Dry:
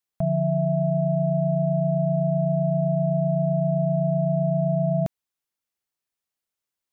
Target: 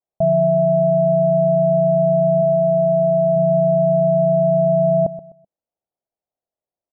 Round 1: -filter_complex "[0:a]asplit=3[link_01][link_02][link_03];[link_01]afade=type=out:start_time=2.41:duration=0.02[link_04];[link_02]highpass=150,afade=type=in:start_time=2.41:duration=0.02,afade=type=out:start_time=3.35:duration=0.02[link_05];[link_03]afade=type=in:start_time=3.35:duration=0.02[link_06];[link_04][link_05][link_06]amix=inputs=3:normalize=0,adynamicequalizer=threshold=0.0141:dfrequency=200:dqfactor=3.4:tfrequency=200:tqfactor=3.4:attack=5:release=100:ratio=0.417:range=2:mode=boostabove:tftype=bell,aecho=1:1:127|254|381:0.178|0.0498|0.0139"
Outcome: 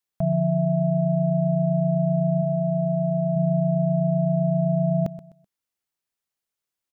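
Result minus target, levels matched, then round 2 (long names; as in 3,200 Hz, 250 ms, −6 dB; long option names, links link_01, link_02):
500 Hz band −4.5 dB
-filter_complex "[0:a]asplit=3[link_01][link_02][link_03];[link_01]afade=type=out:start_time=2.41:duration=0.02[link_04];[link_02]highpass=150,afade=type=in:start_time=2.41:duration=0.02,afade=type=out:start_time=3.35:duration=0.02[link_05];[link_03]afade=type=in:start_time=3.35:duration=0.02[link_06];[link_04][link_05][link_06]amix=inputs=3:normalize=0,adynamicequalizer=threshold=0.0141:dfrequency=200:dqfactor=3.4:tfrequency=200:tqfactor=3.4:attack=5:release=100:ratio=0.417:range=2:mode=boostabove:tftype=bell,lowpass=frequency=660:width_type=q:width=3.6,aecho=1:1:127|254|381:0.178|0.0498|0.0139"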